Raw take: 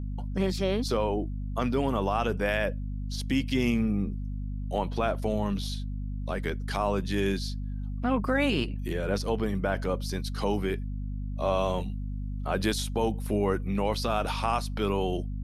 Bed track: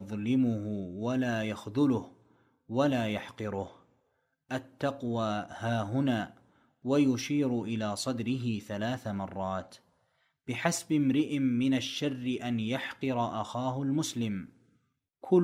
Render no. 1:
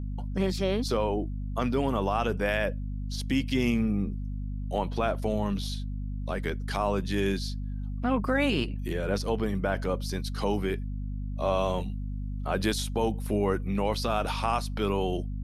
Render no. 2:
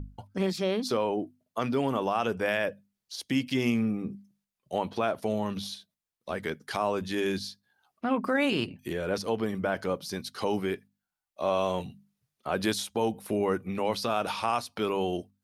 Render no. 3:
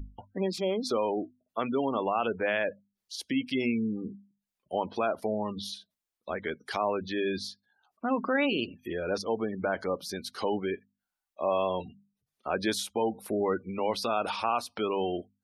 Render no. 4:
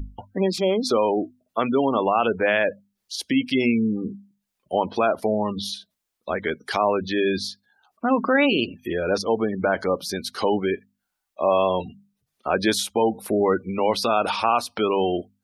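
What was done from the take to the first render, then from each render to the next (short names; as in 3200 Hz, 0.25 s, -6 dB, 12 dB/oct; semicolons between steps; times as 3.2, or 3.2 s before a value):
nothing audible
notches 50/100/150/200/250 Hz
spectral gate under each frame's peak -25 dB strong; bell 130 Hz -10 dB 0.84 oct
gain +8 dB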